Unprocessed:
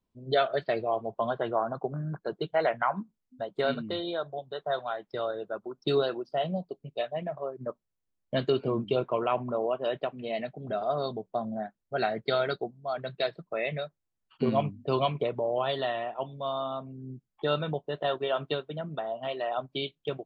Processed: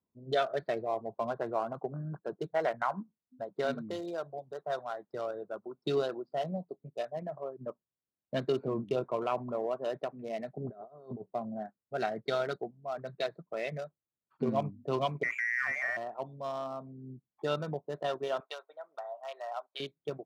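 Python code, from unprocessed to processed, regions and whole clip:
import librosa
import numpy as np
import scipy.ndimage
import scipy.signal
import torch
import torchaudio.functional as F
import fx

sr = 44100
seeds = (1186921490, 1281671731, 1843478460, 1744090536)

y = fx.chain(x, sr, fx.peak_eq(hz=400.0, db=5.5, octaves=0.21),
    fx.over_compress(threshold_db=-37.0, ratio=-0.5),
    fx.lowpass(hz=1400.0, slope=6), at=(10.57, 11.31))
y = fx.chain(y, sr, fx.freq_invert(carrier_hz=2500),
    fx.env_flatten(amount_pct=50), at=(15.23, 15.97))
y = fx.chain(y, sr, fx.highpass(hz=660.0, slope=24),
    fx.notch(hz=1700.0, q=16.0), at=(18.4, 19.8))
y = fx.wiener(y, sr, points=15)
y = scipy.signal.sosfilt(scipy.signal.butter(2, 100.0, 'highpass', fs=sr, output='sos'), y)
y = y * 10.0 ** (-4.0 / 20.0)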